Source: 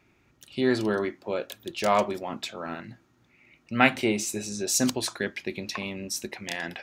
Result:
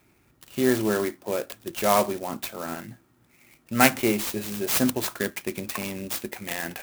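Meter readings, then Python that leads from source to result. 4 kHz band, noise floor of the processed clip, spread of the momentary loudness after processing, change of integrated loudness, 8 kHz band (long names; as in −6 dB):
0.0 dB, −63 dBFS, 13 LU, +2.0 dB, 0.0 dB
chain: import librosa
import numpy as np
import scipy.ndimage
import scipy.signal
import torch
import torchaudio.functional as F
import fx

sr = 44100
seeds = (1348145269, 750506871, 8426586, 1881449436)

y = fx.clock_jitter(x, sr, seeds[0], jitter_ms=0.058)
y = F.gain(torch.from_numpy(y), 2.0).numpy()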